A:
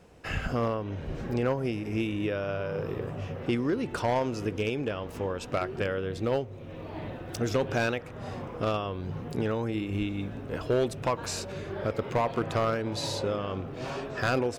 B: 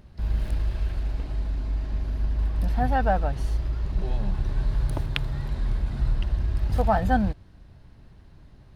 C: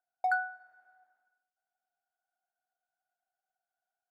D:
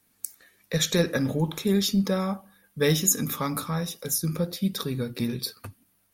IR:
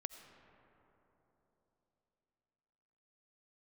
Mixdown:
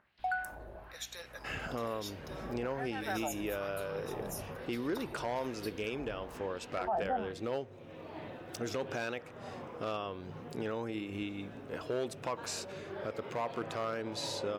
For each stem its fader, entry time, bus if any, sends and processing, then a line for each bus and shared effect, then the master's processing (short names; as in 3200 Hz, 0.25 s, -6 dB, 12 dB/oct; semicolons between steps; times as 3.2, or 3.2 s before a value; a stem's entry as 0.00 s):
-4.5 dB, 1.20 s, no send, HPF 270 Hz 6 dB/oct
+0.5 dB, 0.00 s, no send, high shelf 3700 Hz -9.5 dB; wah 1.1 Hz 540–3300 Hz, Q 2.2
-4.5 dB, 0.00 s, no send, dry
-17.5 dB, 0.20 s, no send, HPF 630 Hz 24 dB/oct; hum 60 Hz, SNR 11 dB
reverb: off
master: limiter -25 dBFS, peak gain reduction 11 dB